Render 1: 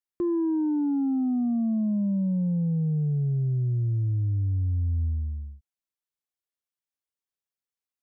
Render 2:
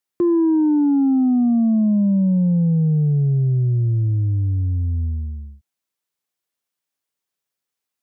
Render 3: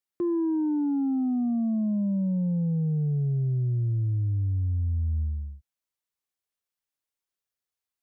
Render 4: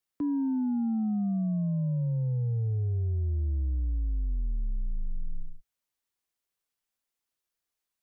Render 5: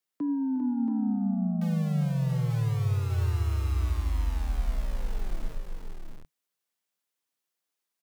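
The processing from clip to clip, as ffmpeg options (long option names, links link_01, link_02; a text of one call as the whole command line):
ffmpeg -i in.wav -af "highpass=100,volume=9dB" out.wav
ffmpeg -i in.wav -af "asubboost=boost=4:cutoff=78,alimiter=limit=-15.5dB:level=0:latency=1:release=12,volume=-7dB" out.wav
ffmpeg -i in.wav -af "alimiter=level_in=3.5dB:limit=-24dB:level=0:latency=1:release=34,volume=-3.5dB,afreqshift=-57,volume=2.5dB" out.wav
ffmpeg -i in.wav -filter_complex "[0:a]acrossover=split=110|340[link_01][link_02][link_03];[link_01]acrusher=bits=6:mix=0:aa=0.000001[link_04];[link_04][link_02][link_03]amix=inputs=3:normalize=0,aecho=1:1:60|80|358|399|679:0.112|0.126|0.168|0.376|0.473" out.wav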